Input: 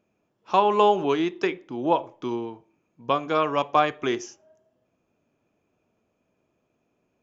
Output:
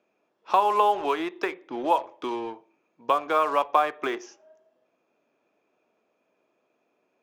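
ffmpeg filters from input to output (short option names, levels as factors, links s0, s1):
-filter_complex "[0:a]highpass=380,lowpass=4900,acrossover=split=690|1600[s0][s1][s2];[s0]acompressor=threshold=0.0158:ratio=4[s3];[s1]acompressor=threshold=0.0562:ratio=4[s4];[s2]acompressor=threshold=0.00631:ratio=4[s5];[s3][s4][s5]amix=inputs=3:normalize=0,bandreject=f=3000:w=22,asplit=2[s6][s7];[s7]acrusher=bits=5:mix=0:aa=0.5,volume=0.266[s8];[s6][s8]amix=inputs=2:normalize=0,volume=1.5"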